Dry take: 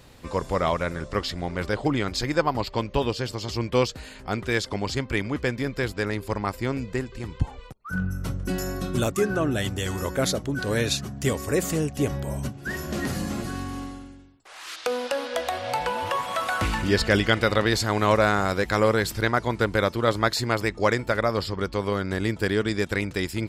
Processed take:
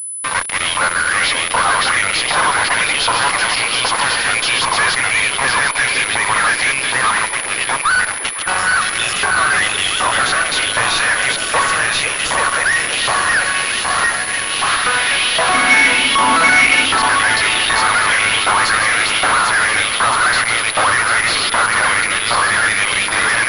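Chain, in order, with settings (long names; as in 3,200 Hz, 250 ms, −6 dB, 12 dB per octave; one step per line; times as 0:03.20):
feedback delay that plays each chunk backwards 521 ms, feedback 43%, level −0.5 dB
drawn EQ curve 120 Hz 0 dB, 250 Hz −18 dB, 700 Hz −4 dB, 2,600 Hz −5 dB
in parallel at −3 dB: compressor whose output falls as the input rises −30 dBFS, ratio −1
on the sum: asymmetric clip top −27 dBFS
auto-filter high-pass saw up 1.3 Hz 900–3,300 Hz
fuzz pedal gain 42 dB, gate −40 dBFS
0:15.54–0:16.84: hollow resonant body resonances 260/2,200 Hz, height 16 dB, ringing for 90 ms
on a send: echo through a band-pass that steps 514 ms, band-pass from 360 Hz, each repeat 0.7 octaves, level −3.5 dB
on the sum: switching amplifier with a slow clock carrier 10,000 Hz
level +1.5 dB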